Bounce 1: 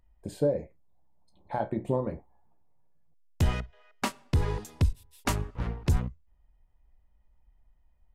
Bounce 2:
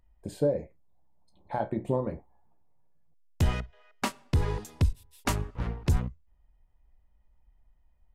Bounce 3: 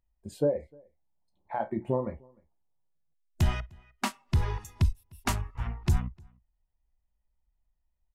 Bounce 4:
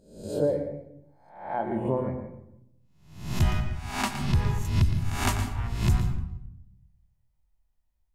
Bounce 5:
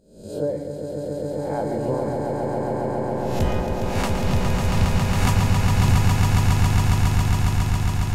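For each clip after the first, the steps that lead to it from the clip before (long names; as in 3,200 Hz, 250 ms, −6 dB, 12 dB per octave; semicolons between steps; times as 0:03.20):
no processing that can be heard
noise reduction from a noise print of the clip's start 13 dB; slap from a distant wall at 52 metres, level −28 dB
peak hold with a rise ahead of every peak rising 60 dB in 0.60 s; convolution reverb RT60 0.75 s, pre-delay 115 ms, DRR 8 dB
echo that builds up and dies away 137 ms, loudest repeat 8, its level −4.5 dB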